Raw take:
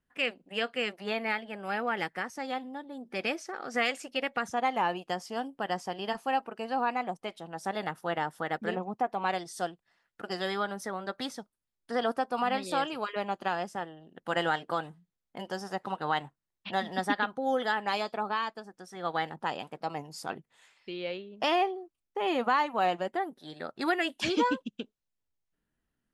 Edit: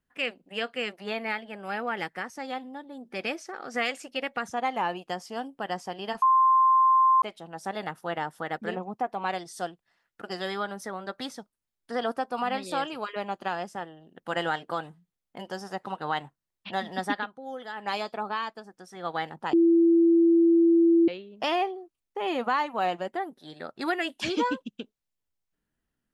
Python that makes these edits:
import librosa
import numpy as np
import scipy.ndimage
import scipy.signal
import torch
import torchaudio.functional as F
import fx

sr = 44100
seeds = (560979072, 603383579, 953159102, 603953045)

y = fx.edit(x, sr, fx.bleep(start_s=6.22, length_s=1.0, hz=1050.0, db=-16.5),
    fx.fade_down_up(start_s=17.15, length_s=0.74, db=-9.5, fade_s=0.16),
    fx.bleep(start_s=19.53, length_s=1.55, hz=335.0, db=-16.0), tone=tone)